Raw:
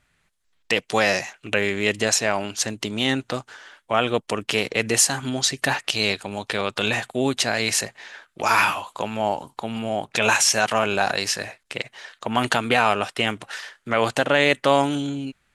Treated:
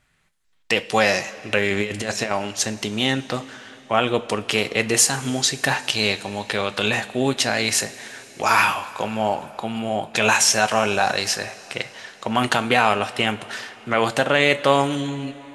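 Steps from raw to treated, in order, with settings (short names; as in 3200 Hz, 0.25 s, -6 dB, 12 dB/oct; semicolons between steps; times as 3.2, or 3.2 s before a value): 1.7–2.31 negative-ratio compressor -25 dBFS, ratio -0.5; two-slope reverb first 0.25 s, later 3.9 s, from -18 dB, DRR 9.5 dB; gain +1 dB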